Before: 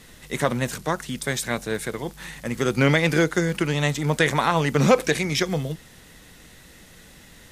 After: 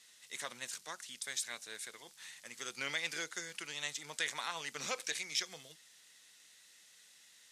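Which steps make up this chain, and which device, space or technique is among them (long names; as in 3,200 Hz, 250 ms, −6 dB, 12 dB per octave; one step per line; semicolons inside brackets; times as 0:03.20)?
piezo pickup straight into a mixer (low-pass filter 6,700 Hz 12 dB per octave; first difference)
level −3.5 dB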